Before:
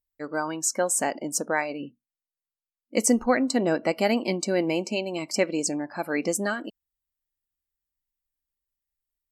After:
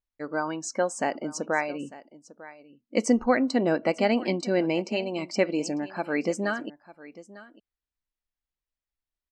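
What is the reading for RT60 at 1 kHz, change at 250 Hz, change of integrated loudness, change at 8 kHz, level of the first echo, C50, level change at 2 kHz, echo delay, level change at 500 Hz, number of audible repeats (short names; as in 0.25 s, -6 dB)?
none, 0.0 dB, -1.0 dB, -10.5 dB, -18.5 dB, none, -0.5 dB, 0.899 s, 0.0 dB, 1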